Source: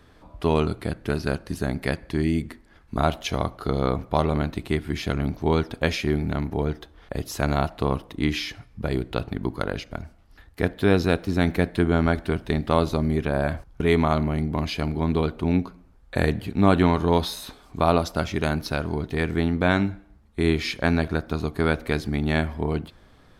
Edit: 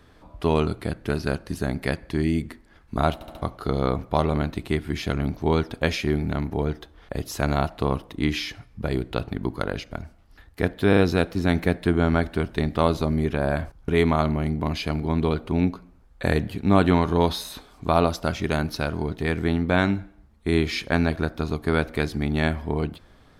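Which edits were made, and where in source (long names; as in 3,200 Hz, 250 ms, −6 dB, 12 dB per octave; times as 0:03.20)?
0:03.14: stutter in place 0.07 s, 4 plays
0:10.89: stutter 0.04 s, 3 plays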